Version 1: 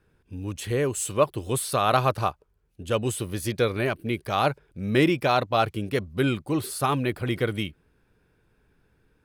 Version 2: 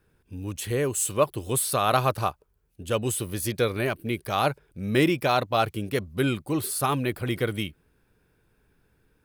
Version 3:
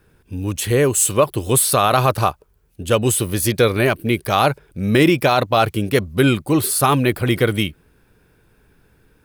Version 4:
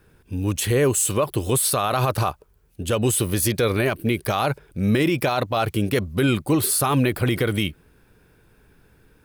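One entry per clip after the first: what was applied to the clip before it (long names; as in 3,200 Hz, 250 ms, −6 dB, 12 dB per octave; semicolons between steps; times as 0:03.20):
high-shelf EQ 9,700 Hz +11 dB; level −1 dB
boost into a limiter +13 dB; level −3 dB
brickwall limiter −11.5 dBFS, peak gain reduction 7.5 dB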